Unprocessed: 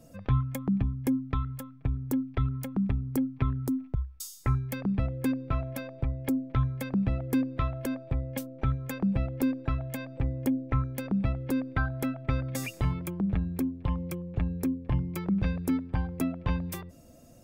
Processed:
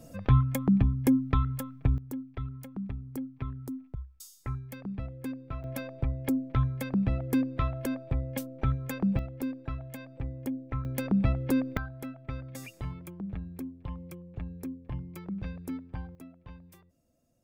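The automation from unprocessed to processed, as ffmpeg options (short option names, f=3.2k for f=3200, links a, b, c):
-af "asetnsamples=n=441:p=0,asendcmd='1.98 volume volume -8.5dB;5.64 volume volume 0dB;9.19 volume volume -6.5dB;10.85 volume volume 2.5dB;11.77 volume volume -9dB;16.15 volume volume -19dB',volume=4dB"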